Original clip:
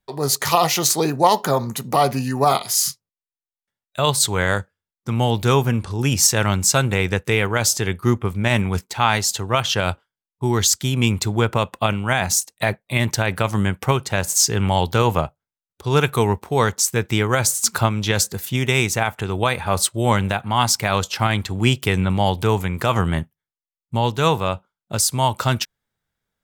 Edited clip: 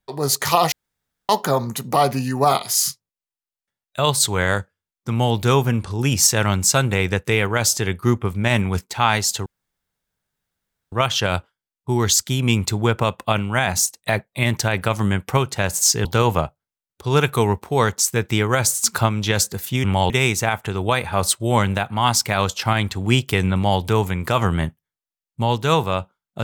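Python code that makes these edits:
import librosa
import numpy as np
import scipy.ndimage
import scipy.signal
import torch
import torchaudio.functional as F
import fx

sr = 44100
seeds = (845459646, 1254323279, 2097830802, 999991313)

y = fx.edit(x, sr, fx.room_tone_fill(start_s=0.72, length_s=0.57),
    fx.insert_room_tone(at_s=9.46, length_s=1.46),
    fx.move(start_s=14.59, length_s=0.26, to_s=18.64), tone=tone)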